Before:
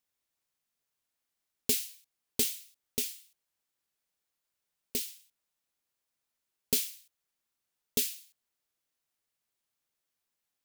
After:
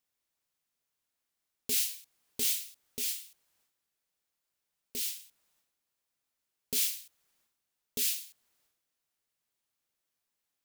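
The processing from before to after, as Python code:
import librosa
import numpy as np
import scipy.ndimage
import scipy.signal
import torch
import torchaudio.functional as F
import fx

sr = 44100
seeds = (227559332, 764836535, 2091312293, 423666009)

y = fx.transient(x, sr, attack_db=-8, sustain_db=10)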